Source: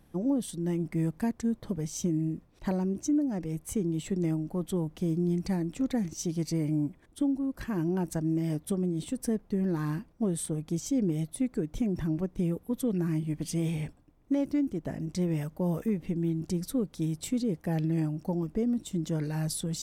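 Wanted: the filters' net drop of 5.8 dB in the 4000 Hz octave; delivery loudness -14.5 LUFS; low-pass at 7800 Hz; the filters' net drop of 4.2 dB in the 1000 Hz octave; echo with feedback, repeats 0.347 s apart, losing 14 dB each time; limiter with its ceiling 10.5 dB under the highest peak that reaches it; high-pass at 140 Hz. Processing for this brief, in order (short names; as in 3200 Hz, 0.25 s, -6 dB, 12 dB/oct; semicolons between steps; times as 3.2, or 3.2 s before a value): HPF 140 Hz; LPF 7800 Hz; bell 1000 Hz -5.5 dB; bell 4000 Hz -7 dB; limiter -30 dBFS; feedback echo 0.347 s, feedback 20%, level -14 dB; gain +23.5 dB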